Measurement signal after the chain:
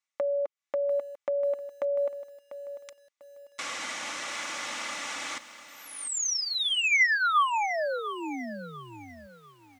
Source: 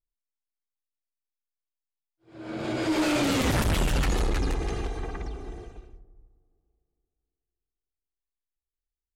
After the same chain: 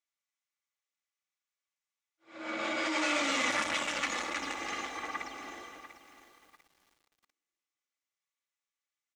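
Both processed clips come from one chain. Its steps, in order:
high-shelf EQ 2,900 Hz +9 dB
comb filter 3.5 ms, depth 44%
downward compressor 2.5 to 1, threshold −30 dBFS
loudspeaker in its box 370–7,000 Hz, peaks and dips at 390 Hz −9 dB, 1,200 Hz +7 dB, 2,100 Hz +8 dB, 4,600 Hz −6 dB
feedback echo at a low word length 695 ms, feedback 35%, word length 9 bits, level −12.5 dB

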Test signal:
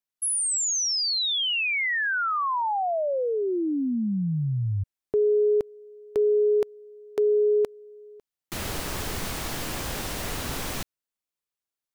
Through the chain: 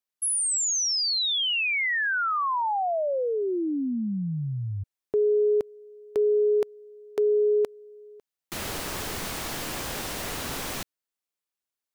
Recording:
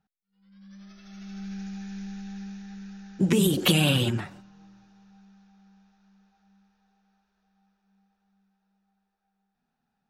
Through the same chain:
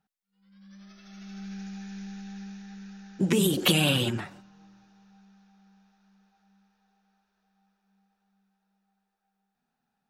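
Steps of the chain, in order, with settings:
low-shelf EQ 140 Hz −7.5 dB

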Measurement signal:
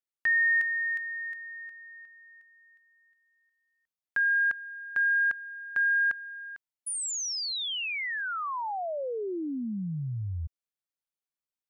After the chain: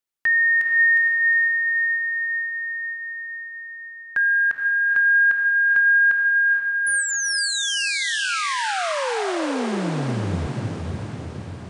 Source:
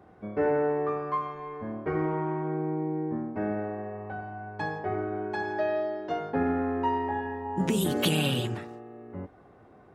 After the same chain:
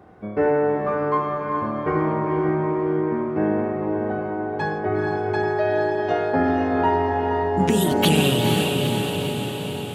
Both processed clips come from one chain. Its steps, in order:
feedback delay with all-pass diffusion 473 ms, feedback 63%, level −3 dB
level +6 dB

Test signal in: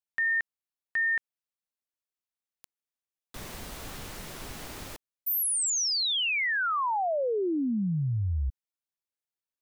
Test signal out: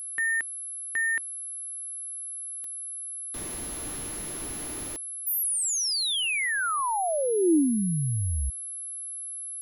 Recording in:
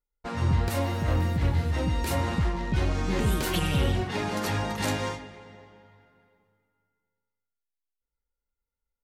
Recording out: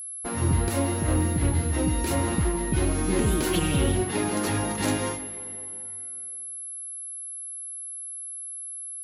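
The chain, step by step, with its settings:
parametric band 320 Hz +8.5 dB 0.65 octaves
steady tone 11,000 Hz −34 dBFS

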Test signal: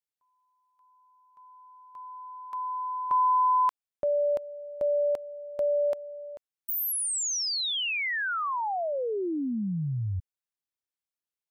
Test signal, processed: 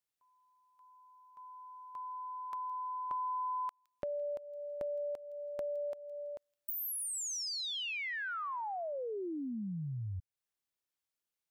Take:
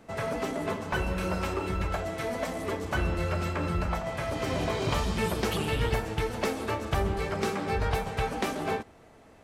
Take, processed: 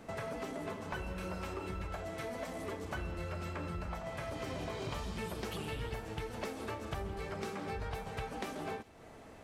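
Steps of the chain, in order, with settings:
downward compressor 3 to 1, threshold −43 dBFS
on a send: delay with a high-pass on its return 165 ms, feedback 37%, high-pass 3,100 Hz, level −16 dB
on the sum: level +1.5 dB

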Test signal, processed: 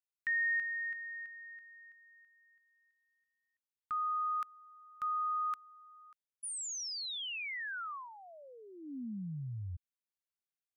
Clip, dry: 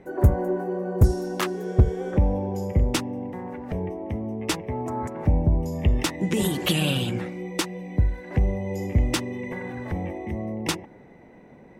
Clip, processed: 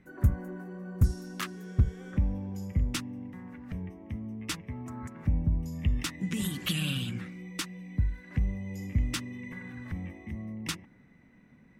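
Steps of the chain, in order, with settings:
flat-topped bell 560 Hz −13 dB
level −6.5 dB

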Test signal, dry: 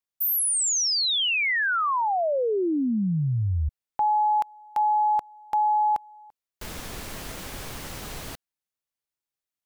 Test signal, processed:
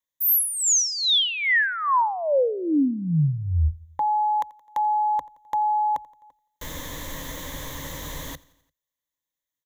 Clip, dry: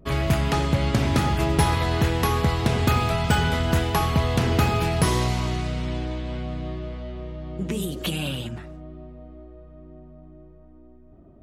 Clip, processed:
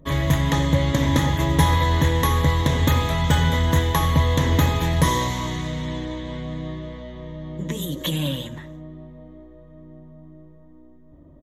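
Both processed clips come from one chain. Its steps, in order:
EQ curve with evenly spaced ripples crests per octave 1.1, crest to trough 12 dB
on a send: repeating echo 86 ms, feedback 59%, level −23 dB

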